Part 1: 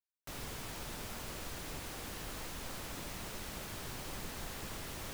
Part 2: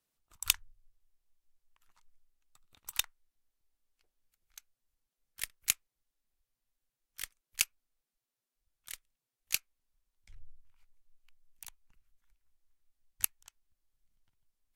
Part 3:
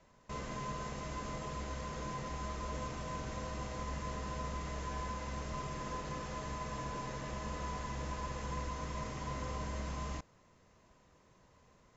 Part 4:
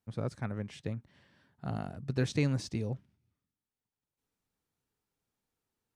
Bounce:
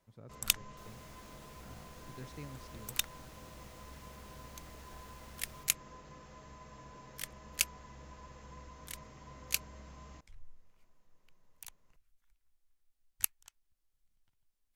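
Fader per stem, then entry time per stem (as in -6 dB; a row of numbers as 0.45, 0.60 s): -13.0, -1.0, -12.0, -18.5 dB; 0.50, 0.00, 0.00, 0.00 s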